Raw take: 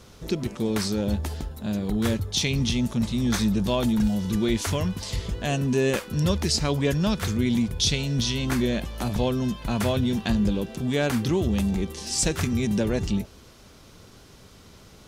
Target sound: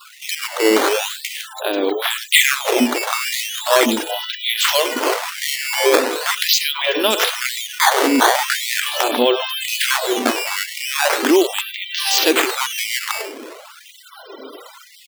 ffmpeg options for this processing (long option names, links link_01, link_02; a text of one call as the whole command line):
ffmpeg -i in.wav -af "adynamicequalizer=threshold=0.00447:dfrequency=3100:dqfactor=2.3:tfrequency=3100:tqfactor=2.3:attack=5:release=100:ratio=0.375:range=4:mode=boostabove:tftype=bell,asoftclip=type=hard:threshold=-15dB,highpass=54,aecho=1:1:103:0.178,acompressor=threshold=-32dB:ratio=1.5,afftfilt=real='re*gte(hypot(re,im),0.00355)':imag='im*gte(hypot(re,im),0.00355)':win_size=1024:overlap=0.75,lowpass=frequency=4300:width=0.5412,lowpass=frequency=4300:width=1.3066,acrusher=samples=10:mix=1:aa=0.000001:lfo=1:lforange=16:lforate=0.4,alimiter=level_in=23dB:limit=-1dB:release=50:level=0:latency=1,afftfilt=real='re*gte(b*sr/1024,240*pow(1900/240,0.5+0.5*sin(2*PI*0.95*pts/sr)))':imag='im*gte(b*sr/1024,240*pow(1900/240,0.5+0.5*sin(2*PI*0.95*pts/sr)))':win_size=1024:overlap=0.75,volume=-2dB" out.wav